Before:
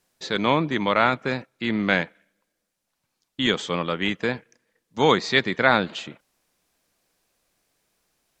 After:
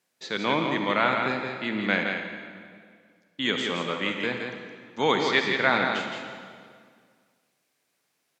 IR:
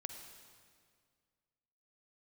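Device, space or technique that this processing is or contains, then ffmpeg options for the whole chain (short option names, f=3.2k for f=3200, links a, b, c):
PA in a hall: -filter_complex "[0:a]highpass=150,equalizer=f=2.2k:t=o:w=0.98:g=3.5,aecho=1:1:169:0.531[a];[1:a]atrim=start_sample=2205[b];[a][b]afir=irnorm=-1:irlink=0,volume=-2dB"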